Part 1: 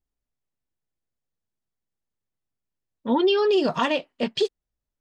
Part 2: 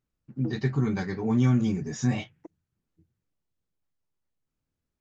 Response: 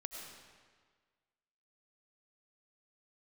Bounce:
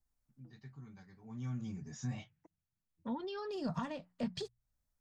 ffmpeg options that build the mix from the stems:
-filter_complex "[0:a]equalizer=f=2900:t=o:w=0.8:g=-12,bandreject=f=60:t=h:w=6,bandreject=f=120:t=h:w=6,bandreject=f=180:t=h:w=6,volume=1.33[s0];[1:a]adynamicequalizer=threshold=0.00282:dfrequency=2300:dqfactor=0.74:tfrequency=2300:tqfactor=0.74:attack=5:release=100:ratio=0.375:range=2:mode=cutabove:tftype=bell,volume=0.282,afade=t=in:st=1.2:d=0.67:silence=0.223872,asplit=2[s1][s2];[s2]apad=whole_len=220633[s3];[s0][s3]sidechaincompress=threshold=0.00282:ratio=5:attack=5.1:release=1110[s4];[s4][s1]amix=inputs=2:normalize=0,equalizer=f=380:t=o:w=1.1:g=-10,acrossover=split=190[s5][s6];[s6]acompressor=threshold=0.00891:ratio=8[s7];[s5][s7]amix=inputs=2:normalize=0"

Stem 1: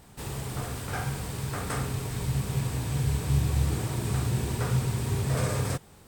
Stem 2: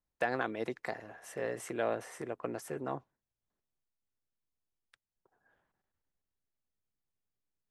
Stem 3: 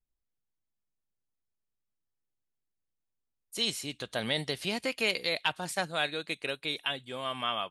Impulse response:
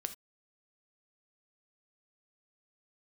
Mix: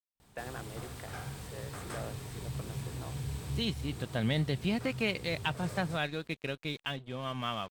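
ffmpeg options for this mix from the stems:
-filter_complex "[0:a]equalizer=f=3700:w=1.5:g=3.5,asoftclip=type=tanh:threshold=0.168,adelay=200,volume=0.316[s0];[1:a]adelay=150,volume=0.299[s1];[2:a]bass=f=250:g=15,treble=f=4000:g=-10,aeval=exprs='sgn(val(0))*max(abs(val(0))-0.00422,0)':c=same,volume=0.75,asplit=2[s2][s3];[s3]apad=whole_len=276781[s4];[s0][s4]sidechaincompress=threshold=0.0224:ratio=5:attack=6.9:release=497[s5];[s5][s1][s2]amix=inputs=3:normalize=0"

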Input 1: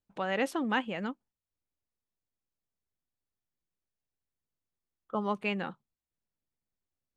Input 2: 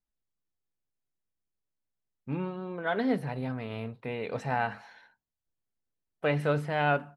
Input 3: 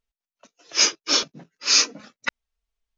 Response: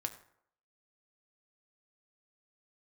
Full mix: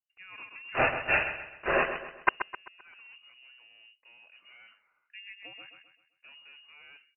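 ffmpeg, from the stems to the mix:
-filter_complex "[0:a]volume=0.141,asplit=2[s0][s1];[s1]volume=0.596[s2];[1:a]asoftclip=type=tanh:threshold=0.0282,volume=0.106[s3];[2:a]acrusher=bits=4:mix=0:aa=0.000001,volume=1.33,asplit=2[s4][s5];[s5]volume=0.335[s6];[s2][s6]amix=inputs=2:normalize=0,aecho=0:1:130|260|390|520|650|780:1|0.4|0.16|0.064|0.0256|0.0102[s7];[s0][s3][s4][s7]amix=inputs=4:normalize=0,equalizer=f=220:w=5.5:g=4,lowpass=f=2600:t=q:w=0.5098,lowpass=f=2600:t=q:w=0.6013,lowpass=f=2600:t=q:w=0.9,lowpass=f=2600:t=q:w=2.563,afreqshift=-3000"

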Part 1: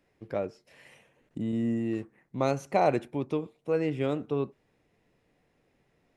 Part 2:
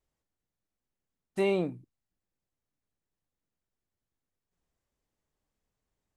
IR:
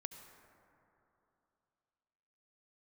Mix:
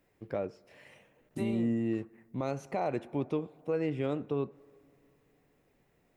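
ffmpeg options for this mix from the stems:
-filter_complex "[0:a]volume=0.841,asplit=3[s0][s1][s2];[s1]volume=0.168[s3];[1:a]aemphasis=mode=production:type=50fm,volume=1.06[s4];[s2]apad=whole_len=271661[s5];[s4][s5]sidechaincompress=threshold=0.00562:ratio=3:attack=16:release=147[s6];[2:a]atrim=start_sample=2205[s7];[s3][s7]afir=irnorm=-1:irlink=0[s8];[s0][s6][s8]amix=inputs=3:normalize=0,highshelf=f=4400:g=-6,alimiter=limit=0.0794:level=0:latency=1:release=146"

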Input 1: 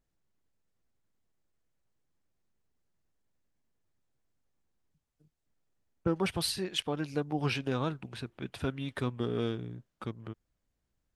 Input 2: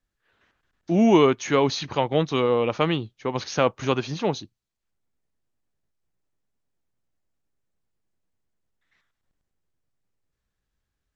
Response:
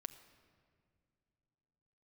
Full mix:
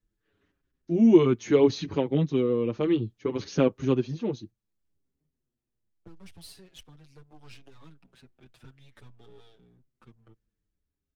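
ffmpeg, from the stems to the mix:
-filter_complex "[0:a]aeval=exprs='if(lt(val(0),0),0.251*val(0),val(0))':c=same,acrossover=split=140|3000[s0][s1][s2];[s1]acompressor=threshold=0.00794:ratio=3[s3];[s0][s3][s2]amix=inputs=3:normalize=0,volume=1.26[s4];[1:a]lowshelf=f=510:t=q:w=1.5:g=10,tremolo=f=0.59:d=0.54,volume=0.596,asplit=2[s5][s6];[s6]apad=whole_len=492030[s7];[s4][s7]sidechaingate=range=0.316:threshold=0.00708:ratio=16:detection=peak[s8];[s8][s5]amix=inputs=2:normalize=0,asplit=2[s9][s10];[s10]adelay=6.4,afreqshift=-0.67[s11];[s9][s11]amix=inputs=2:normalize=1"

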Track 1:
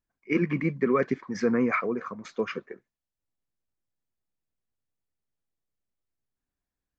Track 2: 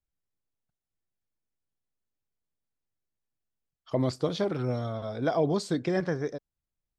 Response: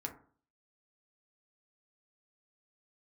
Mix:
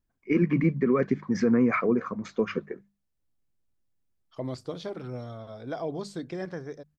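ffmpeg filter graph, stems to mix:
-filter_complex "[0:a]lowshelf=f=370:g=10.5,volume=1[s0];[1:a]adelay=450,volume=0.447[s1];[s0][s1]amix=inputs=2:normalize=0,bandreject=f=50:t=h:w=6,bandreject=f=100:t=h:w=6,bandreject=f=150:t=h:w=6,bandreject=f=200:t=h:w=6,alimiter=limit=0.211:level=0:latency=1:release=180"

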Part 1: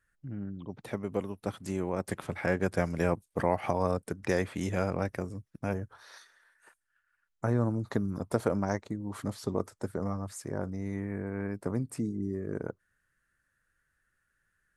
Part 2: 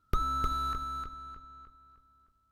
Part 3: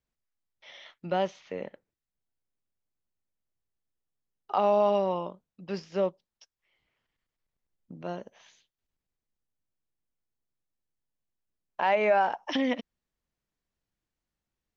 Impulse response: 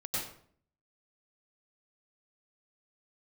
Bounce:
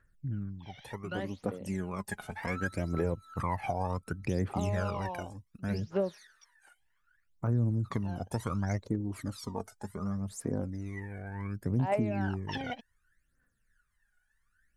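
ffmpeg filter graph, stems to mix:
-filter_complex "[0:a]aphaser=in_gain=1:out_gain=1:delay=4.9:decay=0.43:speed=0.25:type=sinusoidal,volume=0.531,asplit=2[s0][s1];[1:a]alimiter=level_in=1.26:limit=0.0631:level=0:latency=1:release=300,volume=0.794,highpass=540,adelay=2300,volume=0.531[s2];[2:a]volume=0.316[s3];[s1]apad=whole_len=212538[s4];[s2][s4]sidechaincompress=threshold=0.0126:ratio=8:attack=7.2:release=417[s5];[s0][s5][s3]amix=inputs=3:normalize=0,aphaser=in_gain=1:out_gain=1:delay=1.4:decay=0.77:speed=0.67:type=triangular,alimiter=limit=0.106:level=0:latency=1:release=323"

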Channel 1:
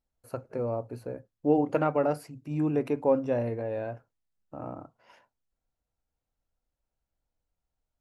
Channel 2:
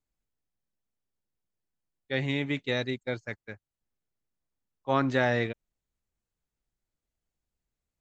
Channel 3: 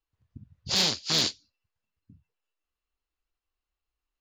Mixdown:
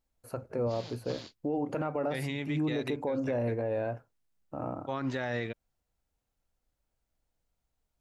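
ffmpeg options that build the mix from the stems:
-filter_complex "[0:a]volume=1.33,asplit=2[s0][s1];[1:a]volume=0.75[s2];[2:a]acompressor=threshold=0.0398:ratio=6,lowpass=f=1600:p=1,volume=0.398[s3];[s1]apad=whole_len=185516[s4];[s3][s4]sidechaingate=range=0.0224:threshold=0.00224:ratio=16:detection=peak[s5];[s0][s2][s5]amix=inputs=3:normalize=0,alimiter=limit=0.0708:level=0:latency=1:release=73"

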